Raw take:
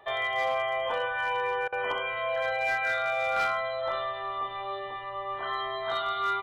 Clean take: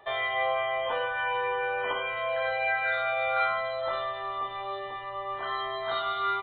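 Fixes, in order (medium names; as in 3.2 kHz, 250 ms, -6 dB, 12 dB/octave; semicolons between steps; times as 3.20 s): clip repair -21.5 dBFS; interpolate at 1.68 s, 43 ms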